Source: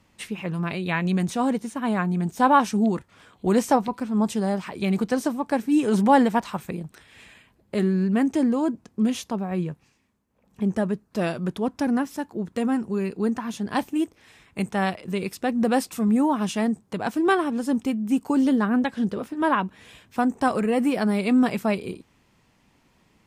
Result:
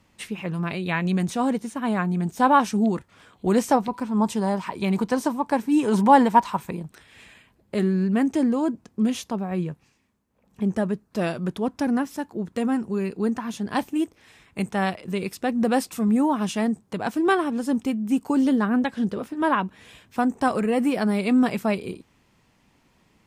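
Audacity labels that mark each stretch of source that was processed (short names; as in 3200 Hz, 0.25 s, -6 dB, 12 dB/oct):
3.940000	6.840000	bell 960 Hz +11.5 dB 0.24 oct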